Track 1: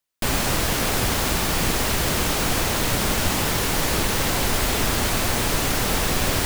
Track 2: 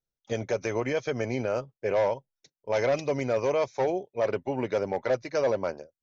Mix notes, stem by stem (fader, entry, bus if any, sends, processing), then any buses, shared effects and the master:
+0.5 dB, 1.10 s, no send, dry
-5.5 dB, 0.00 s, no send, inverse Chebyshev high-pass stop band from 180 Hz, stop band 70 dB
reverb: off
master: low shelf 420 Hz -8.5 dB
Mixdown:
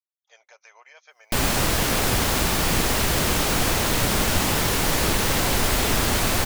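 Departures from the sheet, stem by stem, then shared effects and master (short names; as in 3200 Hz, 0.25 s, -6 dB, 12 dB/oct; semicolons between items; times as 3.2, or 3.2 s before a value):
stem 2 -5.5 dB -> -13.5 dB; master: missing low shelf 420 Hz -8.5 dB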